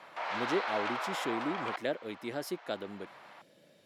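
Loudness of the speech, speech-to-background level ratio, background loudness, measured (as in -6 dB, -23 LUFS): -37.5 LUFS, -1.5 dB, -36.0 LUFS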